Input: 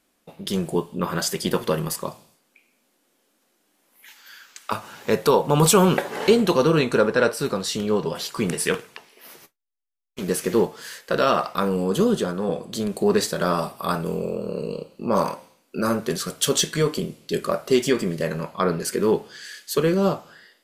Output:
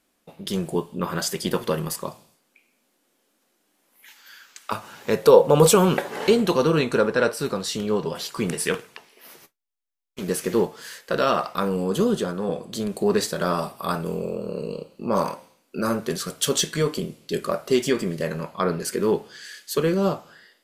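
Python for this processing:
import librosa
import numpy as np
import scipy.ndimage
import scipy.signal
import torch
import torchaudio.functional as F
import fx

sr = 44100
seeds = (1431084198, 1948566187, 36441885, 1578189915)

y = fx.peak_eq(x, sr, hz=510.0, db=12.0, octaves=0.4, at=(5.23, 5.75))
y = y * librosa.db_to_amplitude(-1.5)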